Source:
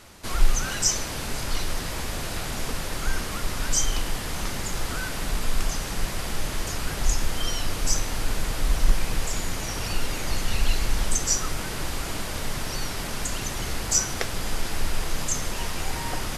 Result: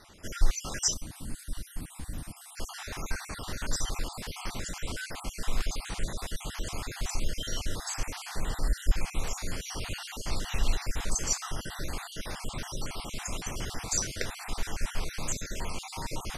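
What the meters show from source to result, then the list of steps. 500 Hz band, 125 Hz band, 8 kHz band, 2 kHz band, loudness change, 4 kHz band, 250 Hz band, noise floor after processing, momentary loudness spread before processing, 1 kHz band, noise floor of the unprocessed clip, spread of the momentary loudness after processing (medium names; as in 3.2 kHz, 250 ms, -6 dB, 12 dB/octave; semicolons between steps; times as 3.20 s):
-7.5 dB, -6.5 dB, -7.0 dB, -7.5 dB, -7.0 dB, -7.0 dB, -7.0 dB, -49 dBFS, 7 LU, -7.0 dB, -32 dBFS, 10 LU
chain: random holes in the spectrogram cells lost 46%; low-pass 11 kHz 12 dB/octave; time-frequency box 0.93–2.57 s, 340–7800 Hz -12 dB; trim -4 dB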